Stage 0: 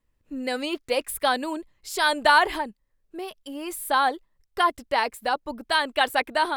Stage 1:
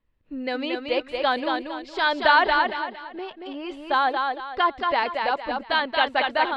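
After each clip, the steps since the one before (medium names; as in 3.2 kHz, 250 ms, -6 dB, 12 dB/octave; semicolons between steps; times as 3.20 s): low-pass 4.1 kHz 24 dB/octave; on a send: thinning echo 229 ms, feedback 34%, high-pass 190 Hz, level -4 dB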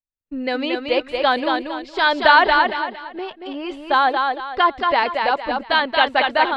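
expander -36 dBFS; trim +5 dB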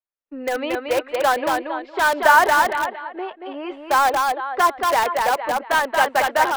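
three-band isolator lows -20 dB, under 330 Hz, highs -19 dB, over 2.4 kHz; in parallel at -8.5 dB: integer overflow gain 17 dB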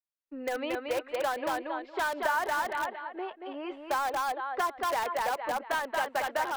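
compression 3:1, threshold -20 dBFS, peak gain reduction 9 dB; trim -7.5 dB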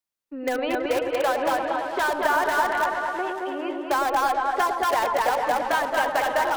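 delay with an opening low-pass 109 ms, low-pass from 750 Hz, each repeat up 1 oct, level -3 dB; trim +6 dB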